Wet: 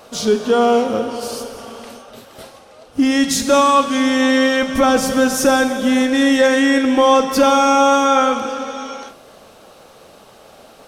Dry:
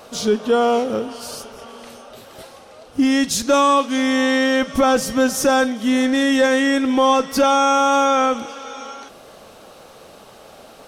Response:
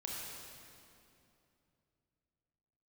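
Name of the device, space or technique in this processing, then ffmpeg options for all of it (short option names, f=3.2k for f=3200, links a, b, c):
keyed gated reverb: -filter_complex "[0:a]asplit=3[a][b][c];[1:a]atrim=start_sample=2205[d];[b][d]afir=irnorm=-1:irlink=0[e];[c]apad=whole_len=479528[f];[e][f]sidechaingate=range=-33dB:threshold=-39dB:ratio=16:detection=peak,volume=-3.5dB[g];[a][g]amix=inputs=2:normalize=0,volume=-1dB"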